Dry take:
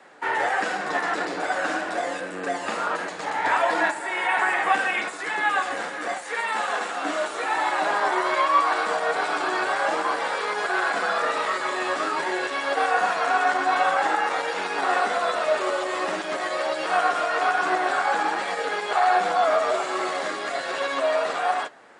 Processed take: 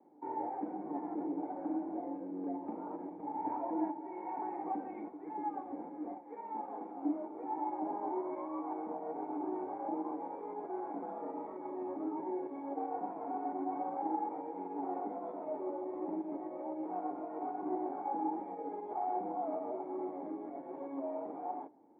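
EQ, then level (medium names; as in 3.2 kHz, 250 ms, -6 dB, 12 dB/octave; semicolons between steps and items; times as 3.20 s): cascade formant filter u; +1.0 dB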